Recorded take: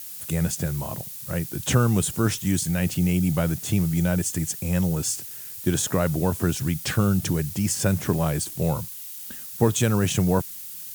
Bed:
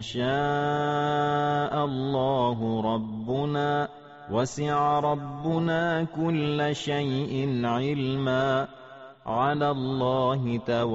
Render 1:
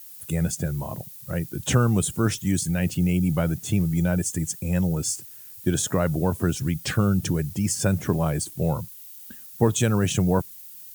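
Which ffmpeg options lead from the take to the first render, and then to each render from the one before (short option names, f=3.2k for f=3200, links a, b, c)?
-af "afftdn=nr=9:nf=-38"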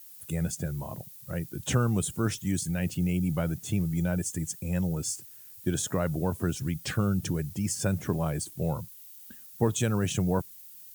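-af "volume=-5.5dB"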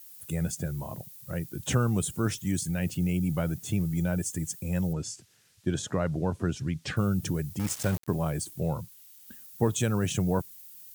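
-filter_complex "[0:a]asettb=1/sr,asplit=3[a][b][c];[a]atrim=end=4.934[d];[b]atrim=start=4.93:end=6.97,asetpts=PTS-STARTPTS,afade=t=in:d=0.004:c=qsin,afade=t=out:st=2.036:d=0.004:c=qsin,lowpass=5.6k[e];[c]atrim=start=6.966[f];[d][e]acrossfade=d=0.004:c1=hsin:c2=qsin[g];[g][f]acrossfade=d=0.004:c1=qsin:c2=hsin,asettb=1/sr,asplit=3[h][i][j];[h]atrim=end=7.594[k];[i]atrim=start=7.59:end=8.08,asetpts=PTS-STARTPTS,afade=t=in:d=0.004:c=qsin,afade=t=out:st=0.486:d=0.004:c=qsin,aeval=exprs='val(0)*gte(abs(val(0)),0.0282)':c=same[l];[j]atrim=start=8.076[m];[k][l]acrossfade=d=0.004:c1=hsin:c2=qsin[n];[n][m]acrossfade=d=0.004:c1=qsin:c2=hsin,asettb=1/sr,asplit=3[o][p][q];[o]atrim=end=8.604[r];[p]atrim=start=8.6:end=9.28,asetpts=PTS-STARTPTS,afade=t=in:d=0.004:c=qsin,afade=t=out:st=0.676:d=0.004:c=qsin,highshelf=f=9.7k:g=-5[s];[q]atrim=start=9.276[t];[r][s]acrossfade=d=0.004:c1=hsin:c2=qsin[u];[u][t]acrossfade=d=0.004:c1=qsin:c2=hsin"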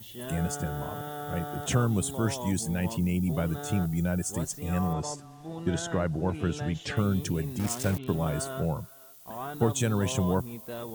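-filter_complex "[1:a]volume=-13dB[a];[0:a][a]amix=inputs=2:normalize=0"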